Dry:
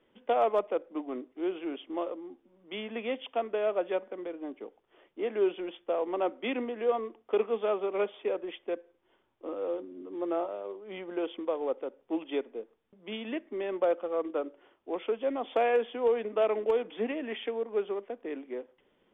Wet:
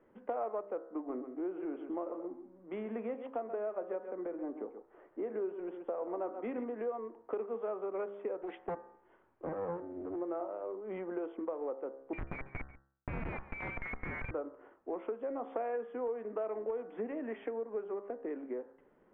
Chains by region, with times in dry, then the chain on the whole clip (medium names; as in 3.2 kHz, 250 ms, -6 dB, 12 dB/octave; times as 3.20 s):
0.87–6.64 s: low-pass 2.5 kHz 6 dB/octave + delay 131 ms -11.5 dB
8.42–10.16 s: treble shelf 2.4 kHz +9 dB + loudspeaker Doppler distortion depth 0.53 ms
12.13–14.31 s: frequency inversion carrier 2.7 kHz + Schmitt trigger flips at -37 dBFS + delay 140 ms -21 dB
whole clip: low-pass 1.7 kHz 24 dB/octave; de-hum 67.16 Hz, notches 28; compression 4:1, threshold -40 dBFS; trim +3.5 dB